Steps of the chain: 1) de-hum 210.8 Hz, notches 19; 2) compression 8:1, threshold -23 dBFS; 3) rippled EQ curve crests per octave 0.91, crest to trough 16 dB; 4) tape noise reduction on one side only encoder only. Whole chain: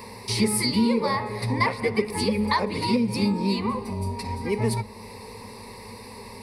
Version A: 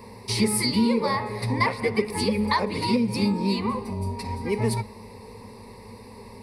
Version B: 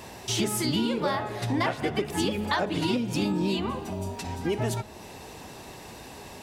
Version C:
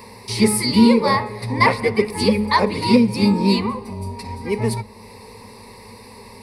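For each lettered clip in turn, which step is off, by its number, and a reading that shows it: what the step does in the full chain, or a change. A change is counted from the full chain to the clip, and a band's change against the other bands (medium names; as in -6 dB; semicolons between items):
4, momentary loudness spread change +3 LU; 3, momentary loudness spread change -2 LU; 2, mean gain reduction 3.0 dB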